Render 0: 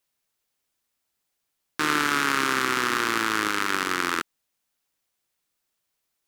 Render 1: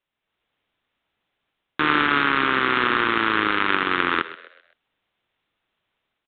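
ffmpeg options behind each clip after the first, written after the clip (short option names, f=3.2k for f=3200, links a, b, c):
-filter_complex "[0:a]dynaudnorm=f=110:g=5:m=8dB,aresample=8000,acrusher=bits=3:mode=log:mix=0:aa=0.000001,aresample=44100,asplit=5[a][b][c][d][e];[b]adelay=129,afreqshift=66,volume=-15.5dB[f];[c]adelay=258,afreqshift=132,volume=-23.5dB[g];[d]adelay=387,afreqshift=198,volume=-31.4dB[h];[e]adelay=516,afreqshift=264,volume=-39.4dB[i];[a][f][g][h][i]amix=inputs=5:normalize=0"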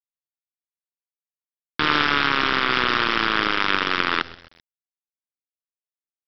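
-af "equalizer=f=3.6k:t=o:w=0.84:g=6.5,aresample=11025,acrusher=bits=4:dc=4:mix=0:aa=0.000001,aresample=44100,volume=-1.5dB"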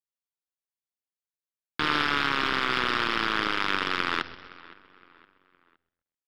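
-filter_complex "[0:a]asplit=2[a][b];[b]adelay=515,lowpass=f=3.3k:p=1,volume=-21dB,asplit=2[c][d];[d]adelay=515,lowpass=f=3.3k:p=1,volume=0.43,asplit=2[e][f];[f]adelay=515,lowpass=f=3.3k:p=1,volume=0.43[g];[a][c][e][g]amix=inputs=4:normalize=0,asplit=2[h][i];[i]asoftclip=type=hard:threshold=-16.5dB,volume=-8dB[j];[h][j]amix=inputs=2:normalize=0,volume=-7.5dB"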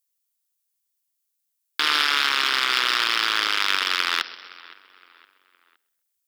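-af "highpass=390,crystalizer=i=7.5:c=0,volume=-3dB"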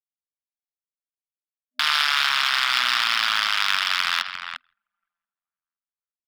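-filter_complex "[0:a]asplit=2[a][b];[b]adelay=350,highpass=300,lowpass=3.4k,asoftclip=type=hard:threshold=-10.5dB,volume=-8dB[c];[a][c]amix=inputs=2:normalize=0,anlmdn=10,afftfilt=real='re*(1-between(b*sr/4096,250,610))':imag='im*(1-between(b*sr/4096,250,610))':win_size=4096:overlap=0.75"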